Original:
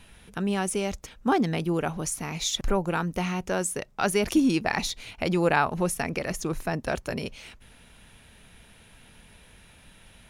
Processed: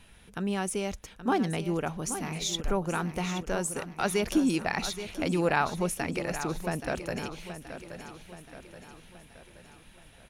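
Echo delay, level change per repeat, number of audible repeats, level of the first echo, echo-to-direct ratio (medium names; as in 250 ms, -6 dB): 826 ms, -6.0 dB, 5, -11.0 dB, -9.5 dB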